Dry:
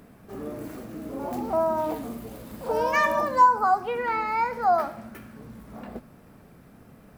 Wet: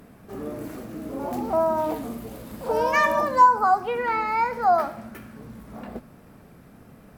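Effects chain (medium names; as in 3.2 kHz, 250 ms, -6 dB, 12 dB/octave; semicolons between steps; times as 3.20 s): trim +2 dB; Opus 256 kbps 48 kHz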